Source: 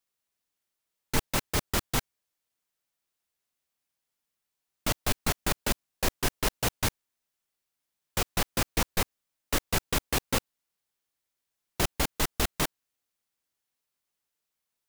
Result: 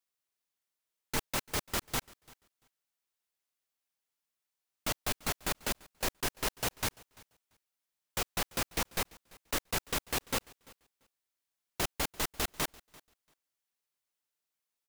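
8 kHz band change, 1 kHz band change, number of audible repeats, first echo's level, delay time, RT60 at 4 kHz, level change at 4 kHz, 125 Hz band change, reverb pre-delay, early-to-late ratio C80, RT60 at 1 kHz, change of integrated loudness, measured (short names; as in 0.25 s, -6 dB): -4.0 dB, -4.5 dB, 1, -23.5 dB, 0.341 s, none, -4.0 dB, -9.0 dB, none, none, none, -4.5 dB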